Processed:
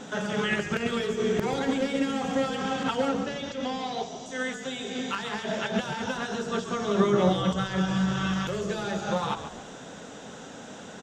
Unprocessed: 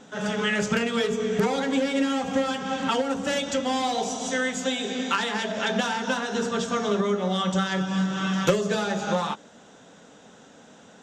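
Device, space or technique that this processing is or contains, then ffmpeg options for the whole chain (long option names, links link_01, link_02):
de-esser from a sidechain: -filter_complex "[0:a]asplit=2[link_01][link_02];[link_02]highpass=frequency=5300:width=0.5412,highpass=frequency=5300:width=1.3066,apad=whole_len=486070[link_03];[link_01][link_03]sidechaincompress=threshold=-53dB:ratio=6:attack=0.65:release=73,asettb=1/sr,asplit=3[link_04][link_05][link_06];[link_04]atrim=end=3.094[link_07];[link_05]atrim=start=3.09:end=4.26,asetpts=PTS-STARTPTS,afade=type=in:duration=0.004:curve=qsin,afade=type=out:start_time=1.166:duration=0.004:curve=qsin,lowpass=frequency=6200:width=0.5412,lowpass=frequency=6200:width=1.3066[link_08];[link_06]atrim=start=4.256[link_09];[link_07][link_08]acrossfade=duration=0.004:curve1=hsin:curve2=qsin[link_10];[link_10][link_09]acrossfade=duration=0.004:curve1=qsin:curve2=hsin,asplit=5[link_11][link_12][link_13][link_14][link_15];[link_12]adelay=137,afreqshift=-53,volume=-10.5dB[link_16];[link_13]adelay=274,afreqshift=-106,volume=-19.4dB[link_17];[link_14]adelay=411,afreqshift=-159,volume=-28.2dB[link_18];[link_15]adelay=548,afreqshift=-212,volume=-37.1dB[link_19];[link_11][link_16][link_17][link_18][link_19]amix=inputs=5:normalize=0,volume=7.5dB"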